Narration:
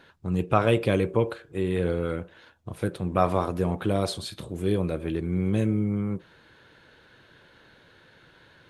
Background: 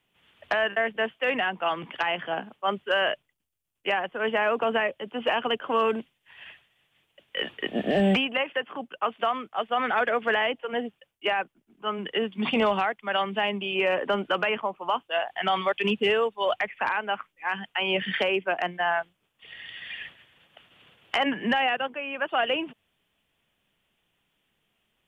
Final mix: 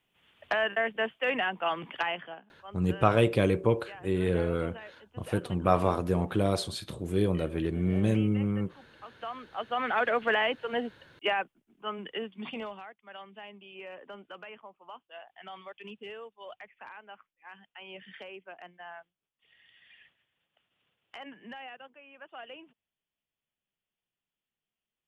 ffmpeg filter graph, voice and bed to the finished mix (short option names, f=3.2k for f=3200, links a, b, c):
-filter_complex "[0:a]adelay=2500,volume=-1.5dB[a];[1:a]volume=15.5dB,afade=t=out:st=2.01:d=0.39:silence=0.133352,afade=t=in:st=9.07:d=1.04:silence=0.11885,afade=t=out:st=11.22:d=1.56:silence=0.125893[b];[a][b]amix=inputs=2:normalize=0"